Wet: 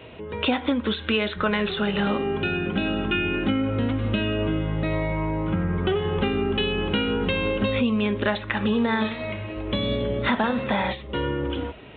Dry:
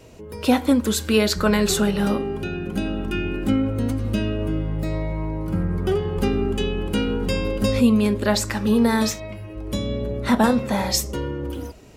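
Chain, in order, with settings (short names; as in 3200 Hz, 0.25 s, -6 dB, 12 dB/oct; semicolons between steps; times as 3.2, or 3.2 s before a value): HPF 60 Hz; tilt shelf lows -4.5 dB, about 870 Hz; compressor 5:1, threshold -26 dBFS, peak gain reduction 12 dB; downsampling 8000 Hz; 8.63–10.64 warbling echo 92 ms, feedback 69%, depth 131 cents, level -16 dB; gain +6 dB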